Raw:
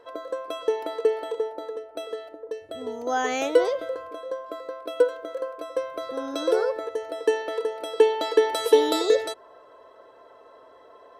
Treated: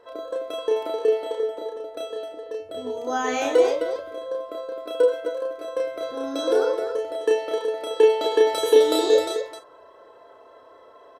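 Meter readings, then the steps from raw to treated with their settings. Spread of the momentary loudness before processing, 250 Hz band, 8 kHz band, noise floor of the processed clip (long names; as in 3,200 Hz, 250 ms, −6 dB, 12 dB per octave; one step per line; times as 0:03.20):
15 LU, +1.5 dB, +2.0 dB, −50 dBFS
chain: double-tracking delay 44 ms −12 dB
loudspeakers that aren't time-aligned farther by 11 metres −2 dB, 89 metres −7 dB
level −1.5 dB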